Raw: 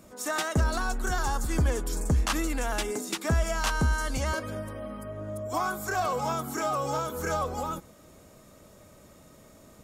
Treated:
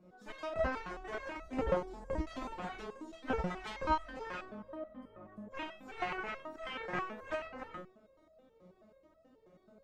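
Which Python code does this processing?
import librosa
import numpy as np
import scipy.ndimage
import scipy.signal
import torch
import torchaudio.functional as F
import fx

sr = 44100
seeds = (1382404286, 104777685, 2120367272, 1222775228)

y = fx.curve_eq(x, sr, hz=(110.0, 580.0, 1400.0, 4200.0, 9900.0), db=(0, 6, -4, -9, -29))
y = fx.room_early_taps(y, sr, ms=(33, 49), db=(-6.0, -8.5))
y = fx.cheby_harmonics(y, sr, harmonics=(3, 7, 8), levels_db=(-11, -24, -34), full_scale_db=-9.5)
y = fx.resonator_held(y, sr, hz=9.3, low_hz=180.0, high_hz=650.0)
y = F.gain(torch.from_numpy(y), 12.5).numpy()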